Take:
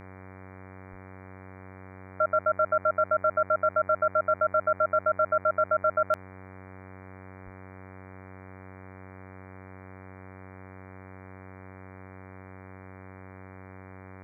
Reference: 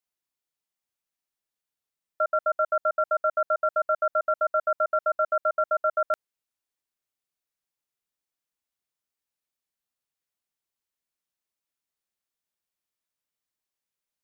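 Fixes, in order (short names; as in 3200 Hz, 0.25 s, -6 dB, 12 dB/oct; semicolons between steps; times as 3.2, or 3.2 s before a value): de-hum 94.3 Hz, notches 25; 0.9–1.02 HPF 140 Hz 24 dB/oct; 7.44–7.56 HPF 140 Hz 24 dB/oct; denoiser 30 dB, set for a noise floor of -47 dBFS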